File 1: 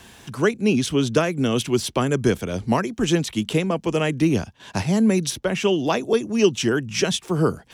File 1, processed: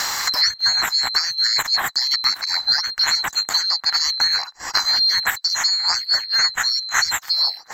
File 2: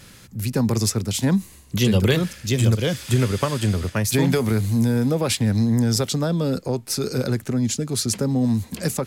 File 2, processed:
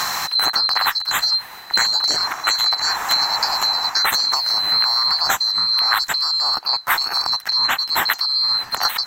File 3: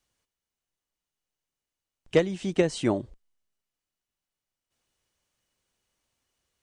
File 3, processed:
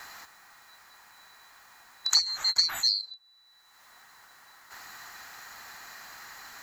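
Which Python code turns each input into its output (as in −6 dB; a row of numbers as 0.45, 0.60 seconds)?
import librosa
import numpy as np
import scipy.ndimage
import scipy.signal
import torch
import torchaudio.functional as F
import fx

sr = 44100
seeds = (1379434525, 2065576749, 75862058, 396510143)

y = fx.band_swap(x, sr, width_hz=4000)
y = fx.band_shelf(y, sr, hz=1200.0, db=14.5, octaves=1.7)
y = fx.band_squash(y, sr, depth_pct=100)
y = y * 10.0 ** (-1.0 / 20.0)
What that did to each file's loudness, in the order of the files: +4.5, +5.0, +2.0 LU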